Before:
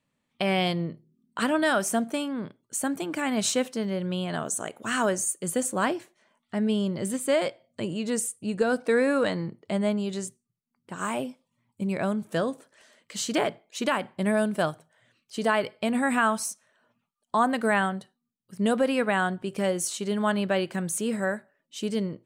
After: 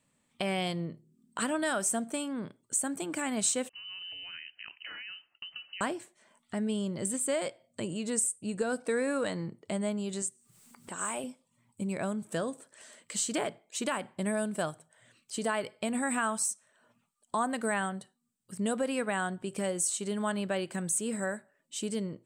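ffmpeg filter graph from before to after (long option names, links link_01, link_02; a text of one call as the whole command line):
ffmpeg -i in.wav -filter_complex "[0:a]asettb=1/sr,asplit=3[link_01][link_02][link_03];[link_01]atrim=end=3.694[link_04];[link_02]atrim=start=3.69:end=5.81,asetpts=PTS-STARTPTS,afade=type=in:duration=0.004:curve=qsin,afade=type=out:start_time=2.116:duration=0.004:curve=qsin,agate=range=-33dB:threshold=-43dB:ratio=3:release=100:detection=peak,acompressor=threshold=-39dB:ratio=8:attack=3.2:release=140:knee=1:detection=peak,lowpass=frequency=2700:width_type=q:width=0.5098,lowpass=frequency=2700:width_type=q:width=0.6013,lowpass=frequency=2700:width_type=q:width=0.9,lowpass=frequency=2700:width_type=q:width=2.563,afreqshift=-3200[link_05];[link_03]atrim=start=5.806[link_06];[link_04][link_05]acrossfade=duration=0.004:curve1=hsin:curve2=qsin[link_07];[link_07][link_06]acrossfade=duration=0.004:curve1=qsin:curve2=hsin,asettb=1/sr,asplit=3[link_08][link_09][link_10];[link_08]atrim=end=10.224[link_11];[link_09]atrim=start=10.22:end=11.24,asetpts=PTS-STARTPTS,afade=type=in:duration=0.004:curve=qsin,afade=type=out:start_time=1.016:duration=0.004:curve=qsin,lowshelf=frequency=230:gain=-12,acompressor=mode=upward:threshold=-40dB:ratio=2.5:attack=3.2:release=140:knee=2.83:detection=peak[link_12];[link_10]atrim=start=11.236[link_13];[link_11][link_12]acrossfade=duration=0.004:curve1=hsin:curve2=qsin[link_14];[link_14][link_13]acrossfade=duration=0.004:curve1=qsin:curve2=hsin,equalizer=frequency=8100:width_type=o:width=0.39:gain=13,acompressor=threshold=-49dB:ratio=1.5,volume=3dB" out.wav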